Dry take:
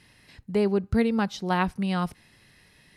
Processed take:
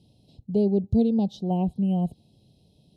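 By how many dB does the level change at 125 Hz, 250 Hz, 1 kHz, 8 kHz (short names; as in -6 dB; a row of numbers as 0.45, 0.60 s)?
+3.5 dB, +3.0 dB, -7.0 dB, under -10 dB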